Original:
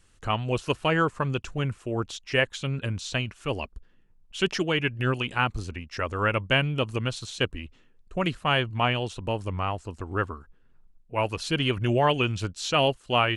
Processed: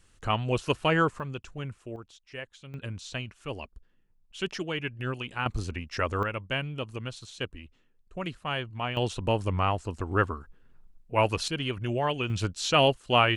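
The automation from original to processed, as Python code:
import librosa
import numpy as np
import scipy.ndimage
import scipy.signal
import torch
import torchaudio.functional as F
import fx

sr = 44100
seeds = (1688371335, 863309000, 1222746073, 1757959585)

y = fx.gain(x, sr, db=fx.steps((0.0, -0.5), (1.2, -8.5), (1.96, -16.5), (2.74, -7.0), (5.46, 1.0), (6.23, -8.0), (8.97, 2.5), (11.48, -6.0), (12.3, 1.0)))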